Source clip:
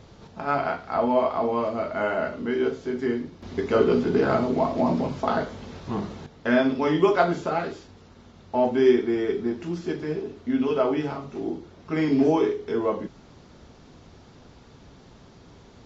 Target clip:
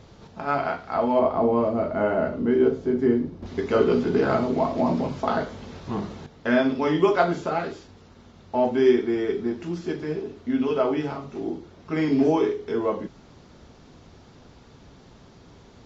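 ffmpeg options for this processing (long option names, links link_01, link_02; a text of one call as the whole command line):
ffmpeg -i in.wav -filter_complex "[0:a]asettb=1/sr,asplit=3[link_01][link_02][link_03];[link_01]atrim=end=1.194[link_04];[link_02]atrim=start=1.19:end=3.46,asetpts=PTS-STARTPTS,afade=type=in:duration=0.004:curve=qsin,afade=type=out:start_time=2.266:duration=0.004:curve=qsin,tiltshelf=frequency=970:gain=7[link_05];[link_03]atrim=start=3.456[link_06];[link_04][link_05]acrossfade=duration=0.004:curve1=hsin:curve2=qsin[link_07];[link_07][link_06]acrossfade=duration=0.004:curve1=qsin:curve2=hsin" out.wav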